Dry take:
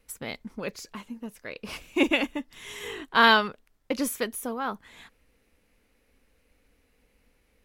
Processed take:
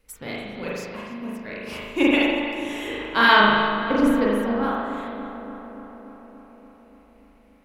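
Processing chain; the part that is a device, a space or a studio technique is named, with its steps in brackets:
0:03.40–0:04.63: spectral tilt −3 dB per octave
dub delay into a spring reverb (feedback echo with a low-pass in the loop 289 ms, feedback 72%, low-pass 2,800 Hz, level −10 dB; spring reverb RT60 1.3 s, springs 38 ms, chirp 50 ms, DRR −5 dB)
level −1 dB

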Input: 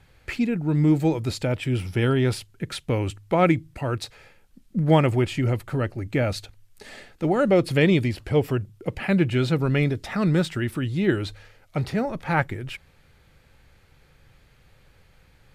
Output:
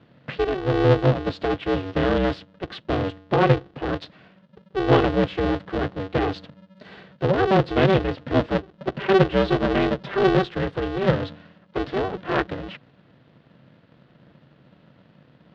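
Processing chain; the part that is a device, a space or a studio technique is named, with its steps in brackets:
0:08.54–0:10.39: comb filter 5.1 ms, depth 77%
ring modulator pedal into a guitar cabinet (ring modulator with a square carrier 190 Hz; loudspeaker in its box 78–3,700 Hz, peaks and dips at 140 Hz +9 dB, 470 Hz +5 dB, 970 Hz −3 dB, 2,300 Hz −7 dB)

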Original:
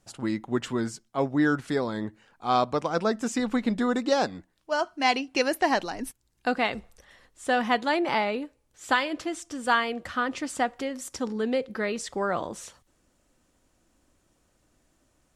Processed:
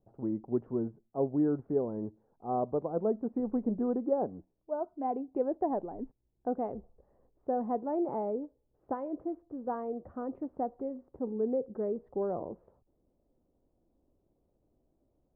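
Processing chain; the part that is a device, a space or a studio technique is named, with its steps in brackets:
under water (low-pass filter 760 Hz 24 dB per octave; parametric band 410 Hz +5 dB 0.38 octaves)
level −5.5 dB

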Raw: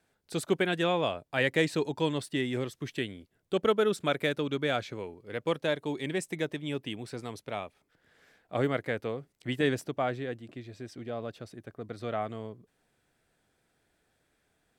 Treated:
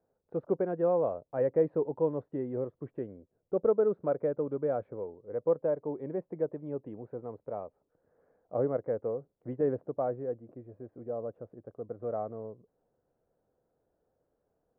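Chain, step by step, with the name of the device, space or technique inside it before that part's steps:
under water (low-pass filter 1,100 Hz 24 dB per octave; parametric band 510 Hz +10 dB 0.59 octaves)
level −5.5 dB

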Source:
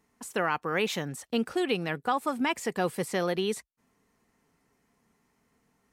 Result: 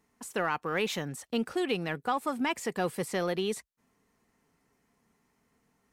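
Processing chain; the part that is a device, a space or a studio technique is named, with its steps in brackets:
parallel distortion (in parallel at −13 dB: hard clipping −29.5 dBFS, distortion −7 dB)
on the sum: level −3 dB

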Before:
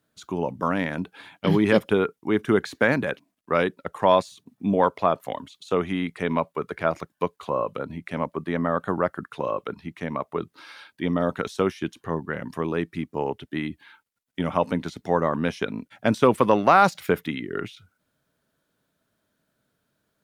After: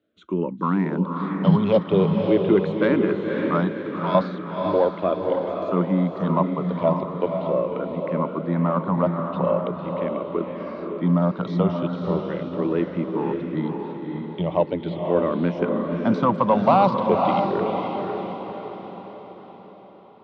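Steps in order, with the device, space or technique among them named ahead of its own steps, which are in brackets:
barber-pole phaser into a guitar amplifier (frequency shifter mixed with the dry sound −0.4 Hz; soft clipping −12.5 dBFS, distortion −18 dB; loudspeaker in its box 86–3,900 Hz, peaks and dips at 180 Hz +10 dB, 340 Hz +6 dB, 580 Hz +5 dB, 1,000 Hz +5 dB, 1,700 Hz −8 dB, 2,400 Hz −4 dB)
0:03.71–0:04.15: guitar amp tone stack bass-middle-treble 10-0-10
feedback delay with all-pass diffusion 542 ms, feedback 50%, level −3.5 dB
level +1 dB

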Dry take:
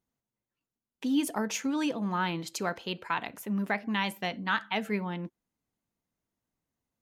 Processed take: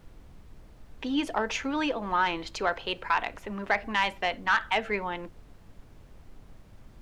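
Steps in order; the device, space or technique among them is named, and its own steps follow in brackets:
aircraft cabin announcement (band-pass filter 440–3,400 Hz; soft clipping −20.5 dBFS, distortion −18 dB; brown noise bed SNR 16 dB)
level +7 dB

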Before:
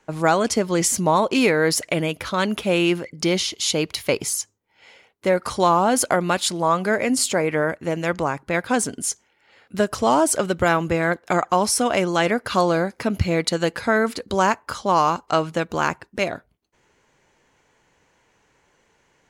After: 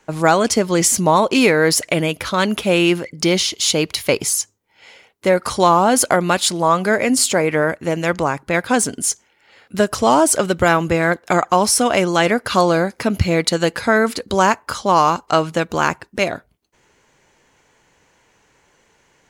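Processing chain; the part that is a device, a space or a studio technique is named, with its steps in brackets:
exciter from parts (in parallel at −5.5 dB: high-pass filter 4,900 Hz 6 dB per octave + soft clipping −27.5 dBFS, distortion −7 dB)
on the sum: level +4 dB

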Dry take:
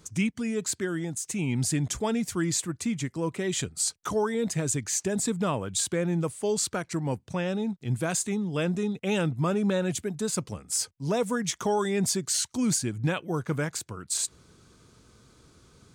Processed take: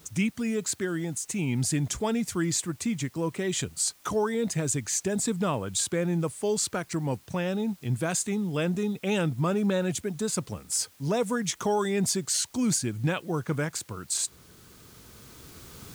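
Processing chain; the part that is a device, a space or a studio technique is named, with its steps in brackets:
cheap recorder with automatic gain (white noise bed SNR 30 dB; camcorder AGC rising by 5.6 dB per second)

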